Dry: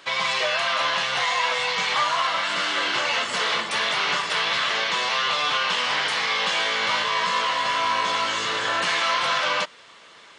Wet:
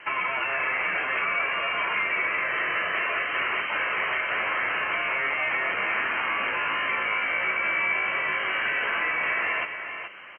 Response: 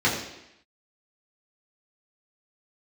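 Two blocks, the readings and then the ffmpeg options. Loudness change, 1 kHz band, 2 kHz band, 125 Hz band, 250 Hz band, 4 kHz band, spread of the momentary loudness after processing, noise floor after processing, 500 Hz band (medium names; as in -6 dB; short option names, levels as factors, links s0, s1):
-3.0 dB, -5.5 dB, +0.5 dB, -5.5 dB, -3.5 dB, -13.0 dB, 2 LU, -35 dBFS, -5.0 dB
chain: -filter_complex "[0:a]asplit=2[s0][s1];[s1]alimiter=limit=0.0841:level=0:latency=1:release=93,volume=0.708[s2];[s0][s2]amix=inputs=2:normalize=0,lowpass=f=2800:t=q:w=0.5098,lowpass=f=2800:t=q:w=0.6013,lowpass=f=2800:t=q:w=0.9,lowpass=f=2800:t=q:w=2.563,afreqshift=-3300,acrossover=split=130|840|1800[s3][s4][s5][s6];[s3]acompressor=threshold=0.00355:ratio=4[s7];[s4]acompressor=threshold=0.0141:ratio=4[s8];[s5]acompressor=threshold=0.0251:ratio=4[s9];[s6]acompressor=threshold=0.0501:ratio=4[s10];[s7][s8][s9][s10]amix=inputs=4:normalize=0,lowshelf=f=200:g=-11,asplit=2[s11][s12];[1:a]atrim=start_sample=2205,afade=t=out:st=0.27:d=0.01,atrim=end_sample=12348,highshelf=f=3900:g=12[s13];[s12][s13]afir=irnorm=-1:irlink=0,volume=0.0251[s14];[s11][s14]amix=inputs=2:normalize=0,crystalizer=i=0.5:c=0,acrossover=split=2600[s15][s16];[s16]acompressor=threshold=0.00708:ratio=4:attack=1:release=60[s17];[s15][s17]amix=inputs=2:normalize=0,aecho=1:1:425:0.376" -ar 16000 -c:a sbc -b:a 128k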